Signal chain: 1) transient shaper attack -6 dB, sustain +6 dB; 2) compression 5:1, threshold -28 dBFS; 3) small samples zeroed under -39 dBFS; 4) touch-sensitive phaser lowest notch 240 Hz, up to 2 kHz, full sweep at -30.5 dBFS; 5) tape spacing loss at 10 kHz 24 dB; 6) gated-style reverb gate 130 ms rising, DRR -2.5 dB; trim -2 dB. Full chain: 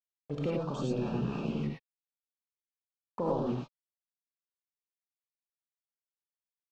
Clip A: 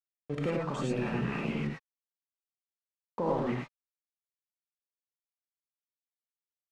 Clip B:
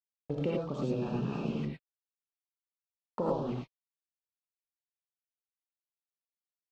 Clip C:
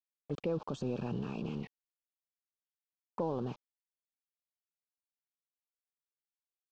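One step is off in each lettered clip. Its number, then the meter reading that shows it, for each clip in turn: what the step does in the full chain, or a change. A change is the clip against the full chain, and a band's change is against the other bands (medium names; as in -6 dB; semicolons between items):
4, 2 kHz band +9.0 dB; 1, momentary loudness spread change -2 LU; 6, momentary loudness spread change -1 LU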